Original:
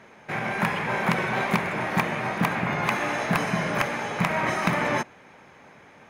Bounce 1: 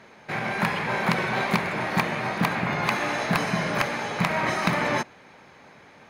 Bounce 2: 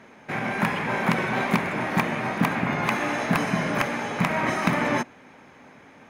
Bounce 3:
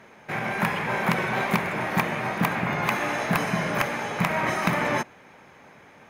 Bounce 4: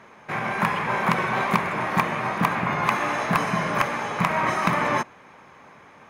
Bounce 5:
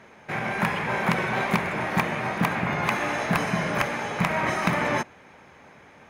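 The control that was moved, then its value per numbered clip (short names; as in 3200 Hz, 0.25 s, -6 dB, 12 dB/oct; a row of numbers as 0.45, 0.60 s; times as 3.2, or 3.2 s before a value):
bell, frequency: 4300, 260, 14000, 1100, 72 Hz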